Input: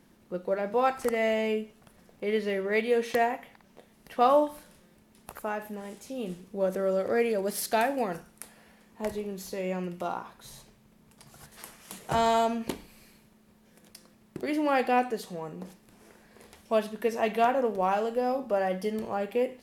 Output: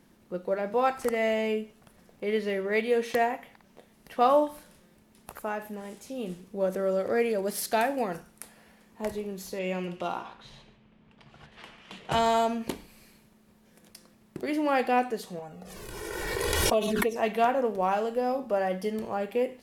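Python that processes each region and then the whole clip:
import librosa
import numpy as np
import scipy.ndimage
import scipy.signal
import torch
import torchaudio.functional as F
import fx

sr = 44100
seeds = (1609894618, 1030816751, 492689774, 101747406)

y = fx.chain(x, sr, fx.echo_single(ms=144, db=-15.0),
    fx.env_lowpass(base_hz=2300.0, full_db=-28.0),
    fx.peak_eq(hz=3000.0, db=8.0, octaves=0.85), at=(9.59, 12.19))
y = fx.chain(y, sr, fx.comb(ms=2.7, depth=0.34),
    fx.env_flanger(rest_ms=2.3, full_db=-23.5),
    fx.pre_swell(db_per_s=22.0), at=(15.39, 17.16))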